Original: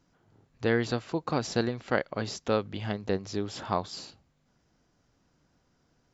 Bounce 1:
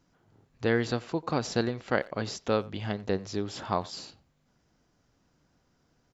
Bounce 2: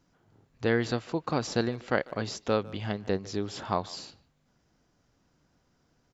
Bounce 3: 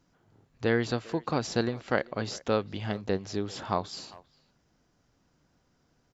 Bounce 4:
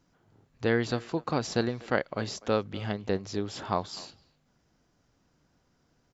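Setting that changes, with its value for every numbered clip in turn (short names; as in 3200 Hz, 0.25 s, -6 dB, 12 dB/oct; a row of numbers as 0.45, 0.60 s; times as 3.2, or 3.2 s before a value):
speakerphone echo, time: 90, 150, 400, 250 ms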